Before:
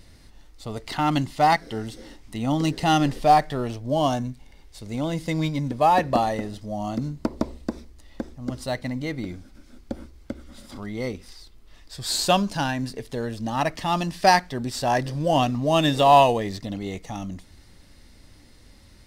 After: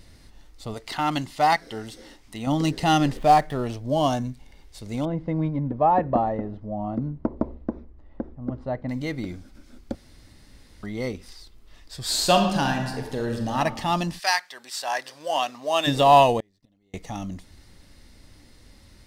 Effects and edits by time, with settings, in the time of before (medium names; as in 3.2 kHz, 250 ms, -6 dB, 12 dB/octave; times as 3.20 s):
0.74–2.47 s: bass shelf 330 Hz -7.5 dB
3.17–3.66 s: median filter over 9 samples
5.05–8.89 s: low-pass 1.1 kHz
9.95–10.83 s: room tone
12.03–13.57 s: reverb throw, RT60 1.2 s, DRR 3 dB
14.18–15.86 s: high-pass 1.4 kHz -> 570 Hz
16.40–16.94 s: inverted gate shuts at -24 dBFS, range -35 dB